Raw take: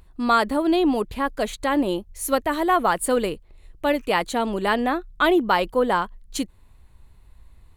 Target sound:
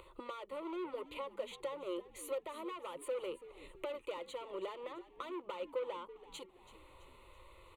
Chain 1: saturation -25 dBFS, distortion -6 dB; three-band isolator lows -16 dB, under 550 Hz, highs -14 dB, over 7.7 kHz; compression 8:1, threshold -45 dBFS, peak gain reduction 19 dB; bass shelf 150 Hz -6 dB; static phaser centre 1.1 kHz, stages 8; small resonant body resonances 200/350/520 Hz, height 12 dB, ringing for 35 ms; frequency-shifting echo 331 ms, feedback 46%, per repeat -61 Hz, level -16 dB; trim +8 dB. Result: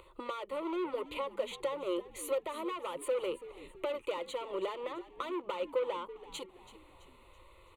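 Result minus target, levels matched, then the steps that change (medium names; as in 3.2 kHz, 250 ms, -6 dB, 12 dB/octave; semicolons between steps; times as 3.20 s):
compression: peak gain reduction -6 dB
change: compression 8:1, threshold -52 dBFS, peak gain reduction 25 dB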